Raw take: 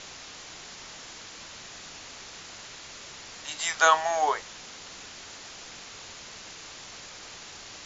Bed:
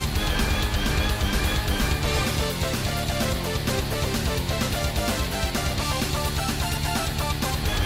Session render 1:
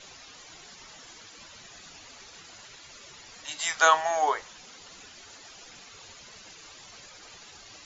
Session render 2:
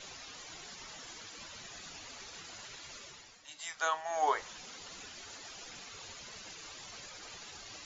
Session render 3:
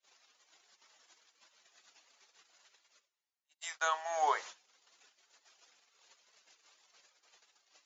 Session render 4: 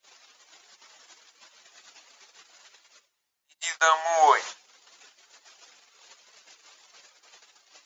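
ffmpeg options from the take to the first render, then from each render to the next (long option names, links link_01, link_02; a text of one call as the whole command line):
ffmpeg -i in.wav -af "afftdn=noise_reduction=12:noise_floor=-45" out.wav
ffmpeg -i in.wav -filter_complex "[0:a]asplit=3[link_01][link_02][link_03];[link_01]atrim=end=3.4,asetpts=PTS-STARTPTS,afade=type=out:start_time=2.94:duration=0.46:silence=0.223872[link_04];[link_02]atrim=start=3.4:end=4.04,asetpts=PTS-STARTPTS,volume=-13dB[link_05];[link_03]atrim=start=4.04,asetpts=PTS-STARTPTS,afade=type=in:duration=0.46:silence=0.223872[link_06];[link_04][link_05][link_06]concat=n=3:v=0:a=1" out.wav
ffmpeg -i in.wav -af "agate=range=-39dB:threshold=-45dB:ratio=16:detection=peak,highpass=480" out.wav
ffmpeg -i in.wav -af "volume=12dB" out.wav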